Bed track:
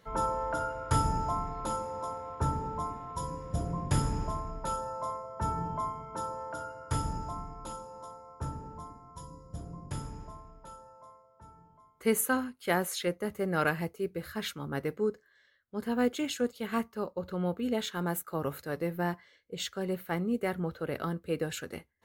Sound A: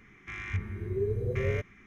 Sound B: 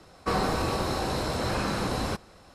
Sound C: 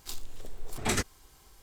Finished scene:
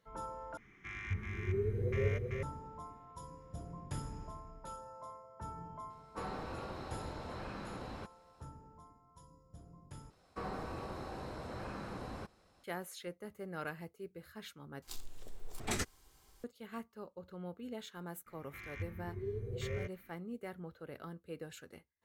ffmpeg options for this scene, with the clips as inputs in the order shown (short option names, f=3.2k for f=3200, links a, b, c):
-filter_complex "[1:a]asplit=2[a][b];[2:a]asplit=2[c][d];[0:a]volume=-13.5dB[e];[a]aecho=1:1:383:0.708[f];[c]acrossover=split=3900[g][h];[h]acompressor=threshold=-53dB:ratio=4:attack=1:release=60[i];[g][i]amix=inputs=2:normalize=0[j];[d]acrossover=split=2500[k][l];[l]acompressor=threshold=-46dB:ratio=4:attack=1:release=60[m];[k][m]amix=inputs=2:normalize=0[n];[e]asplit=4[o][p][q][r];[o]atrim=end=0.574[s];[f]atrim=end=1.86,asetpts=PTS-STARTPTS,volume=-5.5dB[t];[p]atrim=start=2.426:end=10.104[u];[n]atrim=end=2.54,asetpts=PTS-STARTPTS,volume=-15dB[v];[q]atrim=start=12.636:end=14.824[w];[3:a]atrim=end=1.62,asetpts=PTS-STARTPTS,volume=-7.5dB[x];[r]atrim=start=16.436[y];[j]atrim=end=2.54,asetpts=PTS-STARTPTS,volume=-16dB,afade=t=in:d=0.004:c=hsin,afade=t=out:st=2.536:d=0.004:c=hsin,adelay=5900[z];[b]atrim=end=1.86,asetpts=PTS-STARTPTS,volume=-10dB,afade=t=in:d=0.004:c=hsin,afade=t=out:st=1.856:d=0.004:c=hsin,adelay=18260[aa];[s][t]acrossfade=d=0.004:c1=hsin:c2=hsin[ab];[ab][u]acrossfade=d=0.004:c1=hsin:c2=hsin[ac];[ac][v]acrossfade=d=0.004:c1=hsin:c2=hsin[ad];[ad][w]acrossfade=d=0.004:c1=hsin:c2=hsin[ae];[ae][x]acrossfade=d=0.004:c1=hsin:c2=hsin[af];[af][y]acrossfade=d=0.004:c1=hsin:c2=hsin[ag];[ag][z][aa]amix=inputs=3:normalize=0"